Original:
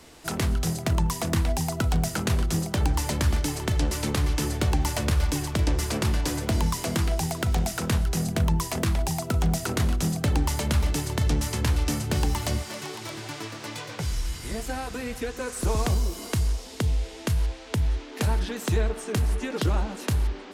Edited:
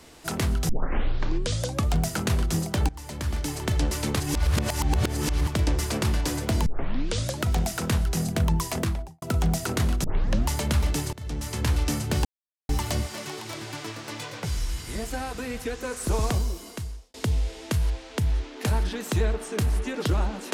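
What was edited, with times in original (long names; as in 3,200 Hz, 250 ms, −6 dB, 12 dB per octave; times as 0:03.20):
0:00.69: tape start 1.30 s
0:02.89–0:03.69: fade in, from −20.5 dB
0:04.20–0:05.47: reverse
0:06.66: tape start 0.81 s
0:08.75–0:09.22: fade out and dull
0:10.04: tape start 0.45 s
0:11.13–0:11.70: fade in, from −22 dB
0:12.25: splice in silence 0.44 s
0:15.81–0:16.70: fade out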